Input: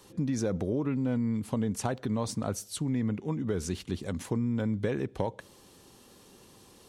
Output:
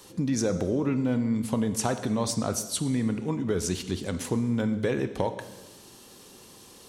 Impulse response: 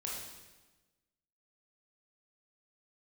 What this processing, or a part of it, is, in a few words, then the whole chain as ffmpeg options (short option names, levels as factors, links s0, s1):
filtered reverb send: -filter_complex "[0:a]highshelf=f=4300:g=7.5,asplit=2[s0][s1];[s1]highpass=150,lowpass=7900[s2];[1:a]atrim=start_sample=2205[s3];[s2][s3]afir=irnorm=-1:irlink=0,volume=0.473[s4];[s0][s4]amix=inputs=2:normalize=0,volume=1.19"